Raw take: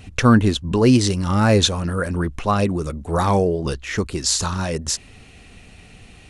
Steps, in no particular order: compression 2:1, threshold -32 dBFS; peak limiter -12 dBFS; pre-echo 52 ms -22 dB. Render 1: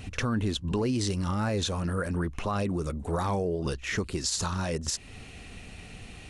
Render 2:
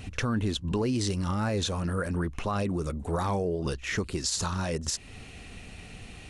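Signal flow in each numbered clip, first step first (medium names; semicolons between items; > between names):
pre-echo > peak limiter > compression; peak limiter > compression > pre-echo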